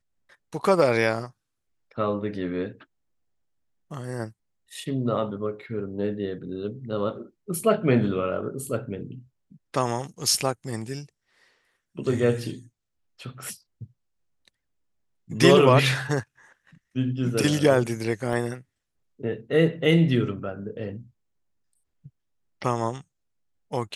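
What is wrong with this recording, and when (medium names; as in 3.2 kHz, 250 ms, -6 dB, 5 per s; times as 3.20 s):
18.33 s: dropout 2.5 ms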